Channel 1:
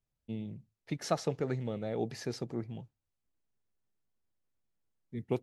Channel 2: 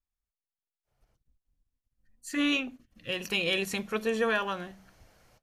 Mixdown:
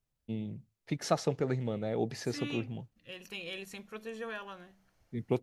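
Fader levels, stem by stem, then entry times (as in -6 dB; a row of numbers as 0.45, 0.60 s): +2.0, -13.0 dB; 0.00, 0.00 s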